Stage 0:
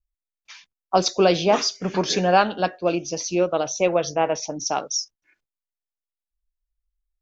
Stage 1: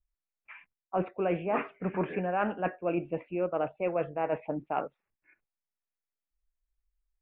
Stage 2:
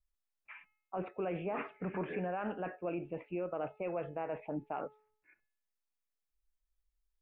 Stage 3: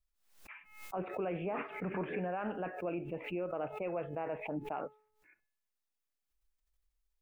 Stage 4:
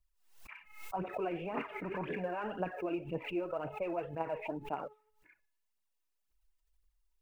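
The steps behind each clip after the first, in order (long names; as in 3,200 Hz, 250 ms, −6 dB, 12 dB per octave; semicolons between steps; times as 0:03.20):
Butterworth low-pass 2,600 Hz 72 dB per octave; reversed playback; downward compressor 6 to 1, threshold −25 dBFS, peak gain reduction 13 dB; reversed playback; level −1.5 dB
brickwall limiter −26 dBFS, peak gain reduction 9.5 dB; tuned comb filter 430 Hz, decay 0.62 s, mix 60%; level +5 dB
background raised ahead of every attack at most 91 dB per second
phase shifter 1.9 Hz, delay 3.4 ms, feedback 57%; hollow resonant body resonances 960/2,800 Hz, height 8 dB; level −1.5 dB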